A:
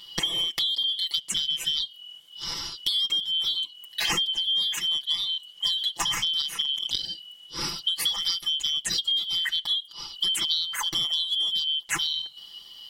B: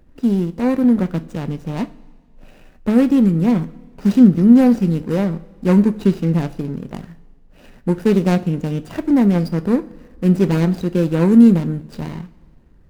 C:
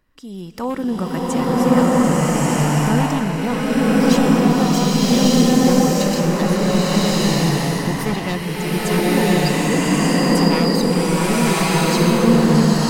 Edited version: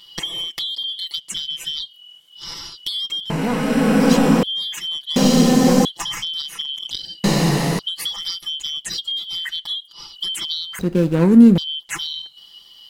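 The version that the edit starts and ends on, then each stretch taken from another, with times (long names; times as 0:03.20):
A
0:03.30–0:04.43: punch in from C
0:05.16–0:05.85: punch in from C
0:07.24–0:07.79: punch in from C
0:10.79–0:11.58: punch in from B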